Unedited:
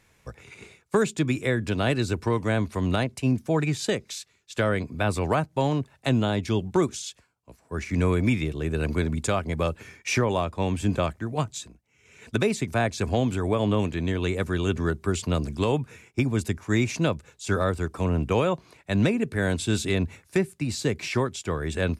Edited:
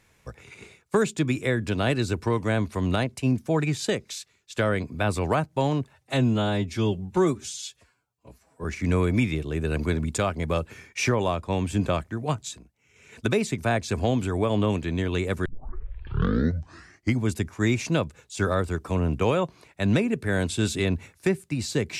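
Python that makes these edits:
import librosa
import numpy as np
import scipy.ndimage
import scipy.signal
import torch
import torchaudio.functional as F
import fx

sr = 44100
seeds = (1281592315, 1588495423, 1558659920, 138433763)

y = fx.edit(x, sr, fx.stretch_span(start_s=5.93, length_s=1.81, factor=1.5),
    fx.tape_start(start_s=14.55, length_s=1.83), tone=tone)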